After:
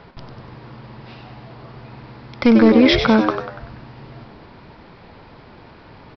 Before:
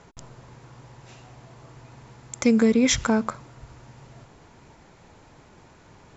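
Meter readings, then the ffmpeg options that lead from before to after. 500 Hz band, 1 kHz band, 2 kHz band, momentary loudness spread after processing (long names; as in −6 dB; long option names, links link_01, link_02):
+8.0 dB, +9.5 dB, +8.0 dB, 15 LU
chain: -filter_complex "[0:a]aresample=11025,volume=14.5dB,asoftclip=hard,volume=-14.5dB,aresample=44100,asplit=6[link_01][link_02][link_03][link_04][link_05][link_06];[link_02]adelay=96,afreqshift=93,volume=-7.5dB[link_07];[link_03]adelay=192,afreqshift=186,volume=-14.1dB[link_08];[link_04]adelay=288,afreqshift=279,volume=-20.6dB[link_09];[link_05]adelay=384,afreqshift=372,volume=-27.2dB[link_10];[link_06]adelay=480,afreqshift=465,volume=-33.7dB[link_11];[link_01][link_07][link_08][link_09][link_10][link_11]amix=inputs=6:normalize=0,volume=7.5dB"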